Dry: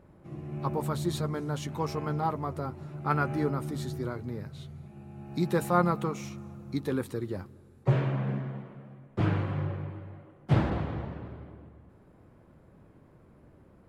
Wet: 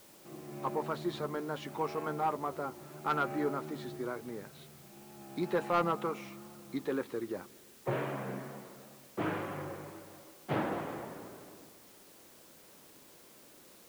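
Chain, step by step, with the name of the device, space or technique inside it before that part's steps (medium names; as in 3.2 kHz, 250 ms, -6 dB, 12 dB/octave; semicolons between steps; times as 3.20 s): tape answering machine (band-pass 310–3100 Hz; saturation -21 dBFS, distortion -14 dB; wow and flutter; white noise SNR 21 dB)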